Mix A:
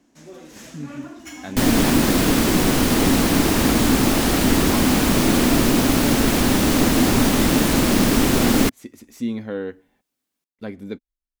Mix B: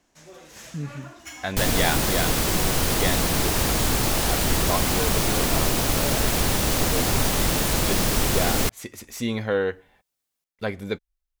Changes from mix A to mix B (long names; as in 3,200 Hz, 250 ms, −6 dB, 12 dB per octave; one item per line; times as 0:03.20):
speech +9.5 dB
second sound: add parametric band 1,700 Hz −4 dB 2.4 octaves
master: add parametric band 260 Hz −14.5 dB 1 octave